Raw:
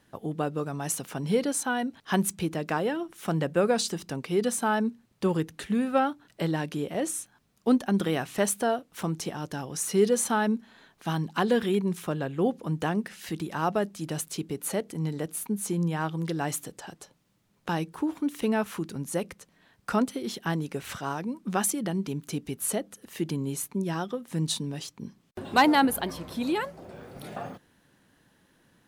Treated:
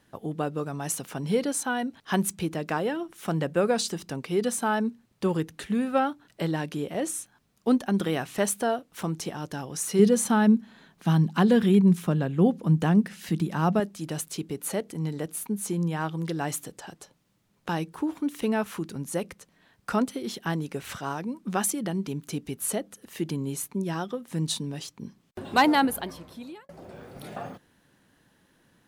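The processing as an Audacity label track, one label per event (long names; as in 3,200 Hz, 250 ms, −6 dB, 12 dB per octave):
9.990000	13.800000	parametric band 180 Hz +10.5 dB 0.97 octaves
25.750000	26.690000	fade out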